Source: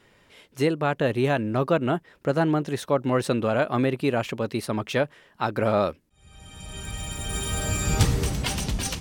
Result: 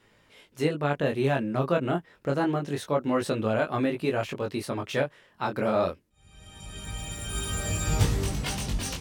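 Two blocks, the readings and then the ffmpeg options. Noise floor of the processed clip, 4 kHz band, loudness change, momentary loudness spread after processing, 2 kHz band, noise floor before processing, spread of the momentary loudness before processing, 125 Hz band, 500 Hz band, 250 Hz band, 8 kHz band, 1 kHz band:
-62 dBFS, -3.5 dB, -3.0 dB, 8 LU, -3.0 dB, -60 dBFS, 8 LU, -3.0 dB, -3.0 dB, -3.0 dB, -3.5 dB, -3.0 dB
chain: -filter_complex "[0:a]acrossover=split=2100[a][b];[b]asoftclip=type=hard:threshold=-26dB[c];[a][c]amix=inputs=2:normalize=0,flanger=delay=18.5:depth=4.4:speed=0.27"

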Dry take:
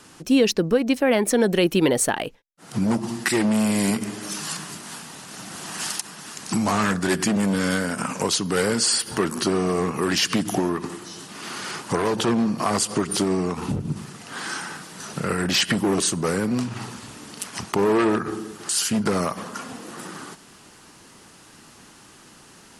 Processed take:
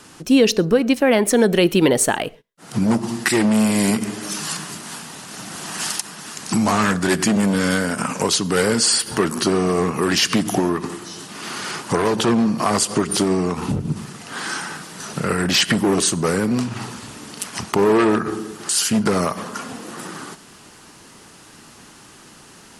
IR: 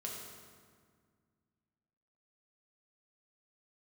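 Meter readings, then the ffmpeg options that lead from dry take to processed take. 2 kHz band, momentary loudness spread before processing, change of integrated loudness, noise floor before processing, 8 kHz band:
+4.0 dB, 16 LU, +4.0 dB, -49 dBFS, +4.0 dB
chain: -filter_complex "[0:a]asplit=2[a][b];[1:a]atrim=start_sample=2205,atrim=end_sample=6174[c];[b][c]afir=irnorm=-1:irlink=0,volume=-16dB[d];[a][d]amix=inputs=2:normalize=0,volume=3dB"

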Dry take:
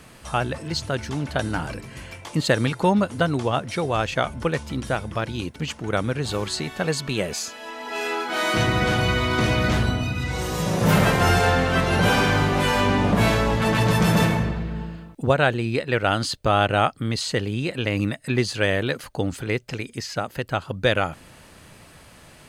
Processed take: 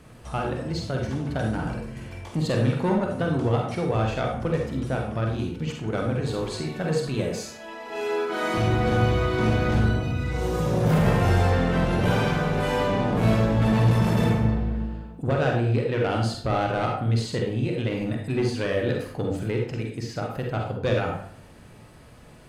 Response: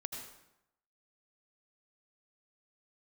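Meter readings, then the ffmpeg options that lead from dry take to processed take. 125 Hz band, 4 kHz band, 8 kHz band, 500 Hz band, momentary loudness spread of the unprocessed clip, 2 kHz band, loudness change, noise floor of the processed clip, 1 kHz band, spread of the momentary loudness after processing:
+0.5 dB, -8.5 dB, -9.0 dB, -1.5 dB, 10 LU, -7.5 dB, -2.0 dB, -47 dBFS, -4.5 dB, 10 LU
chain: -filter_complex "[0:a]tiltshelf=f=1.1k:g=5,bandreject=f=48.89:t=h:w=4,bandreject=f=97.78:t=h:w=4,bandreject=f=146.67:t=h:w=4,bandreject=f=195.56:t=h:w=4,bandreject=f=244.45:t=h:w=4,bandreject=f=293.34:t=h:w=4,bandreject=f=342.23:t=h:w=4,bandreject=f=391.12:t=h:w=4,bandreject=f=440.01:t=h:w=4,bandreject=f=488.9:t=h:w=4,bandreject=f=537.79:t=h:w=4,bandreject=f=586.68:t=h:w=4,bandreject=f=635.57:t=h:w=4,bandreject=f=684.46:t=h:w=4,bandreject=f=733.35:t=h:w=4,bandreject=f=782.24:t=h:w=4,bandreject=f=831.13:t=h:w=4,bandreject=f=880.02:t=h:w=4,bandreject=f=928.91:t=h:w=4,bandreject=f=977.8:t=h:w=4,bandreject=f=1.02669k:t=h:w=4,bandreject=f=1.07558k:t=h:w=4,bandreject=f=1.12447k:t=h:w=4,bandreject=f=1.17336k:t=h:w=4,bandreject=f=1.22225k:t=h:w=4,bandreject=f=1.27114k:t=h:w=4,bandreject=f=1.32003k:t=h:w=4,bandreject=f=1.36892k:t=h:w=4,bandreject=f=1.41781k:t=h:w=4,bandreject=f=1.4667k:t=h:w=4,bandreject=f=1.51559k:t=h:w=4,bandreject=f=1.56448k:t=h:w=4,bandreject=f=1.61337k:t=h:w=4,bandreject=f=1.66226k:t=h:w=4,bandreject=f=1.71115k:t=h:w=4,bandreject=f=1.76004k:t=h:w=4,bandreject=f=1.80893k:t=h:w=4,bandreject=f=1.85782k:t=h:w=4,asoftclip=type=tanh:threshold=-13dB[a];[1:a]atrim=start_sample=2205,asetrate=83790,aresample=44100[b];[a][b]afir=irnorm=-1:irlink=0,volume=3.5dB"

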